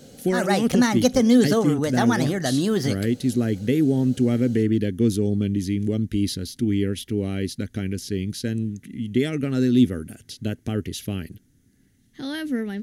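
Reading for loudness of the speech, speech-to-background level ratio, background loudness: −24.5 LKFS, −3.0 dB, −21.5 LKFS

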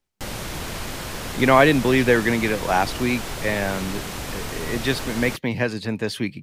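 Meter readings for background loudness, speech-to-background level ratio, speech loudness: −31.0 LKFS, 9.5 dB, −21.5 LKFS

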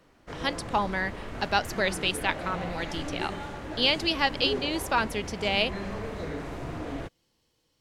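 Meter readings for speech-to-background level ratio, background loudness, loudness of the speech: 9.0 dB, −37.0 LKFS, −28.0 LKFS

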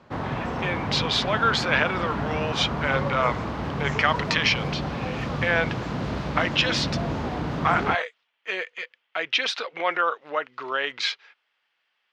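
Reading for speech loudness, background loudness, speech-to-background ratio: −25.5 LKFS, −29.0 LKFS, 3.5 dB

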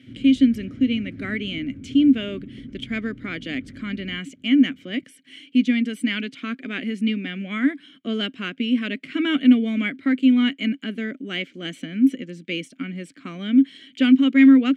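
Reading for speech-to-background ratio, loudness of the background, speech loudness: 17.5 dB, −39.5 LKFS, −22.0 LKFS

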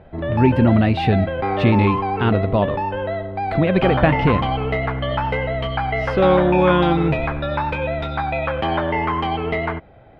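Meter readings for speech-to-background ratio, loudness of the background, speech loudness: 4.0 dB, −23.0 LKFS, −19.0 LKFS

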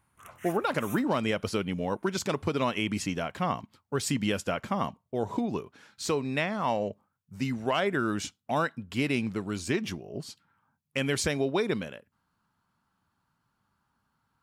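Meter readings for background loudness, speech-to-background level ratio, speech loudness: −46.5 LKFS, 16.0 dB, −30.5 LKFS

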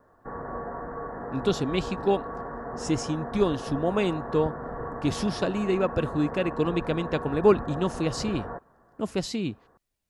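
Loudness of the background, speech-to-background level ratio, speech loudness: −36.0 LKFS, 8.5 dB, −27.5 LKFS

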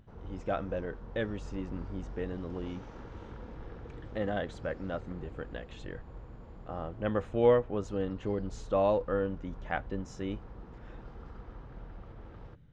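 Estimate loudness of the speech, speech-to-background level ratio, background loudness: −34.0 LKFS, 14.5 dB, −48.5 LKFS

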